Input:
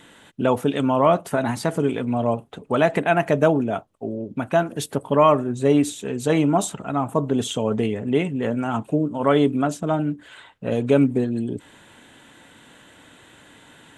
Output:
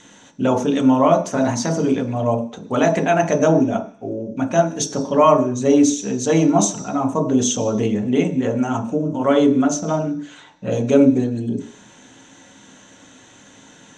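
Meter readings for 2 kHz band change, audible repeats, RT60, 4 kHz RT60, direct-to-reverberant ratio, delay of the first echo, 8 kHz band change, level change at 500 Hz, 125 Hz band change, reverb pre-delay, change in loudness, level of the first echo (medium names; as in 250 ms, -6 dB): 0.0 dB, no echo, 0.50 s, 0.85 s, 3.0 dB, no echo, +10.5 dB, +2.5 dB, +2.0 dB, 3 ms, +3.5 dB, no echo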